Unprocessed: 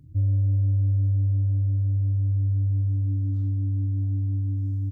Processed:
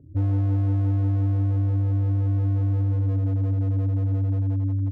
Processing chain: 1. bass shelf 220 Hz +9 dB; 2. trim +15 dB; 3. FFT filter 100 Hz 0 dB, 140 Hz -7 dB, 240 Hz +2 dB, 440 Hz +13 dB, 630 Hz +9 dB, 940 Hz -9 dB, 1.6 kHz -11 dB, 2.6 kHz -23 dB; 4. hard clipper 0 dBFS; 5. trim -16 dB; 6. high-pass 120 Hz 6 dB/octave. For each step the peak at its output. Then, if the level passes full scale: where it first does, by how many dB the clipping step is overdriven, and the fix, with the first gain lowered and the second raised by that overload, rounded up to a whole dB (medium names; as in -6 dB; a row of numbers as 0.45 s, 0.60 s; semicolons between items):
-10.0 dBFS, +5.0 dBFS, +5.5 dBFS, 0.0 dBFS, -16.0 dBFS, -15.0 dBFS; step 2, 5.5 dB; step 2 +9 dB, step 5 -10 dB